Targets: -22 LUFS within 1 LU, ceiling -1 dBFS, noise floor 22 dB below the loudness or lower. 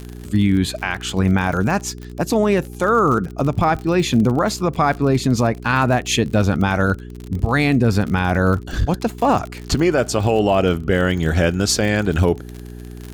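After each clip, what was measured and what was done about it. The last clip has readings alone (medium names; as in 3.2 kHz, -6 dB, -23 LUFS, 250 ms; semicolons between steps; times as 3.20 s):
tick rate 49 per s; hum 60 Hz; highest harmonic 420 Hz; hum level -32 dBFS; loudness -18.5 LUFS; peak level -6.0 dBFS; loudness target -22.0 LUFS
-> de-click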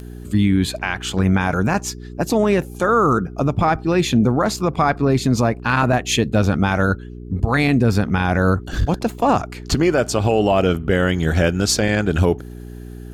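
tick rate 0.84 per s; hum 60 Hz; highest harmonic 420 Hz; hum level -32 dBFS
-> de-hum 60 Hz, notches 7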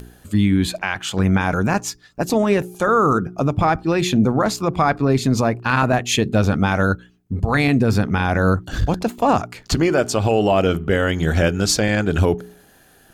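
hum not found; loudness -19.0 LUFS; peak level -6.0 dBFS; loudness target -22.0 LUFS
-> trim -3 dB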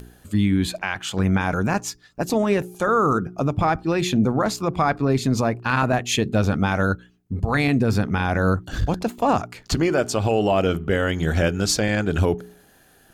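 loudness -22.0 LUFS; peak level -9.0 dBFS; noise floor -55 dBFS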